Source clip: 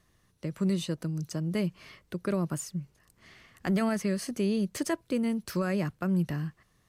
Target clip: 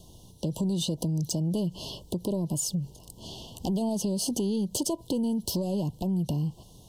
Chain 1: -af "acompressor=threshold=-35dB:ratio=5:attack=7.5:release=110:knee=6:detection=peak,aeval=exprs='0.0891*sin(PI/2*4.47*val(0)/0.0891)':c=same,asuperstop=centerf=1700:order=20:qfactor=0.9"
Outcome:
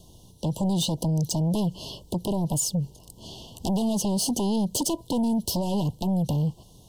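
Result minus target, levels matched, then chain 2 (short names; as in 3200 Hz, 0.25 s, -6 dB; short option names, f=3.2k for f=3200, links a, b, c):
compressor: peak gain reduction -7 dB
-af "acompressor=threshold=-43.5dB:ratio=5:attack=7.5:release=110:knee=6:detection=peak,aeval=exprs='0.0891*sin(PI/2*4.47*val(0)/0.0891)':c=same,asuperstop=centerf=1700:order=20:qfactor=0.9"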